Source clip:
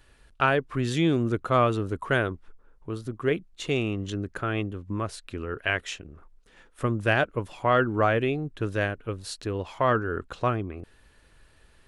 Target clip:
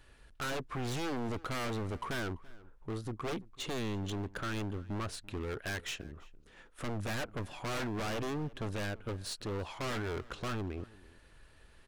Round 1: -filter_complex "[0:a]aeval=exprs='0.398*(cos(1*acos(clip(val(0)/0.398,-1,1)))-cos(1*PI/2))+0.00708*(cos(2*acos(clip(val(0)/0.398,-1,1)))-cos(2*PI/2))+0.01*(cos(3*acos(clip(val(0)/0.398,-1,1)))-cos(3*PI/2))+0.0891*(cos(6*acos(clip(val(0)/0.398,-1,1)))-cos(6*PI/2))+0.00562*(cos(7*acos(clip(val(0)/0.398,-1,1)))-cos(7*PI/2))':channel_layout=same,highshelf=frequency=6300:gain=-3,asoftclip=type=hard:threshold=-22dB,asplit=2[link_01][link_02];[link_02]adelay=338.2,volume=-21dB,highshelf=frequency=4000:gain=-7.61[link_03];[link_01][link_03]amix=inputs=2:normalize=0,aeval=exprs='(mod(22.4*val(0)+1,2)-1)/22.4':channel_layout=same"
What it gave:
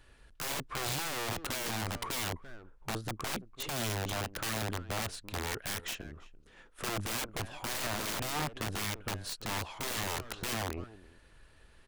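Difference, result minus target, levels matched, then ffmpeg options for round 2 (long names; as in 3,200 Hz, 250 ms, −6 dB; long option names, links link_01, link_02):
hard clipping: distortion −5 dB
-filter_complex "[0:a]aeval=exprs='0.398*(cos(1*acos(clip(val(0)/0.398,-1,1)))-cos(1*PI/2))+0.00708*(cos(2*acos(clip(val(0)/0.398,-1,1)))-cos(2*PI/2))+0.01*(cos(3*acos(clip(val(0)/0.398,-1,1)))-cos(3*PI/2))+0.0891*(cos(6*acos(clip(val(0)/0.398,-1,1)))-cos(6*PI/2))+0.00562*(cos(7*acos(clip(val(0)/0.398,-1,1)))-cos(7*PI/2))':channel_layout=same,highshelf=frequency=6300:gain=-3,asoftclip=type=hard:threshold=-32.5dB,asplit=2[link_01][link_02];[link_02]adelay=338.2,volume=-21dB,highshelf=frequency=4000:gain=-7.61[link_03];[link_01][link_03]amix=inputs=2:normalize=0,aeval=exprs='(mod(22.4*val(0)+1,2)-1)/22.4':channel_layout=same"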